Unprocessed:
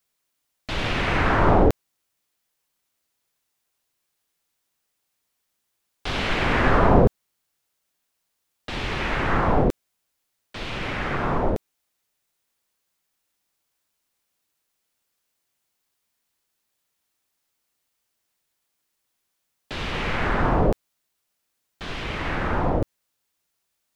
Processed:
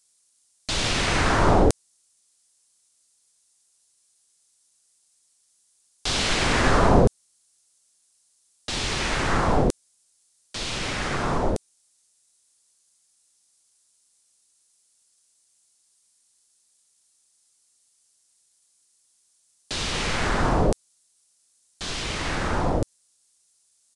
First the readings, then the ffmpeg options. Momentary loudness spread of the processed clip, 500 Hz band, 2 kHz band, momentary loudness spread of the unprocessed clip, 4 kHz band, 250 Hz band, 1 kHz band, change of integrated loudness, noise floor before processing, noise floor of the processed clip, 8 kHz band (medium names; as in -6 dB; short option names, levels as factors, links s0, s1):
13 LU, -1.0 dB, -0.5 dB, 16 LU, +5.5 dB, -1.0 dB, -1.0 dB, -0.5 dB, -77 dBFS, -66 dBFS, no reading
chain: -filter_complex "[0:a]acrossover=split=3700[s0][s1];[s1]crystalizer=i=7.5:c=0[s2];[s0][s2]amix=inputs=2:normalize=0,aresample=22050,aresample=44100,volume=0.891"